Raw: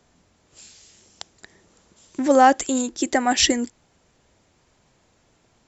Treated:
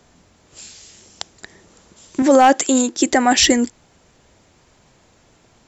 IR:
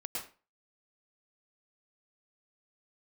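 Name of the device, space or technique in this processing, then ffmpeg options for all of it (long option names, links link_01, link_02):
clipper into limiter: -filter_complex "[0:a]asettb=1/sr,asplit=3[link_01][link_02][link_03];[link_01]atrim=end=2.224[link_04];[link_02]atrim=start=2.22:end=3.07,asetpts=PTS-STARTPTS,afade=type=in:duration=0.004:curve=qsin,afade=type=out:start_time=0.846:duration=0.004:curve=qsin,highpass=170[link_05];[link_03]atrim=start=3.066[link_06];[link_04][link_05]acrossfade=duration=0.004:curve1=hsin:curve2=qsin[link_07];[link_07][link_06]acrossfade=duration=0.004:curve1=qsin:curve2=hsin,asoftclip=type=hard:threshold=-6.5dB,alimiter=limit=-11.5dB:level=0:latency=1:release=22,volume=7.5dB"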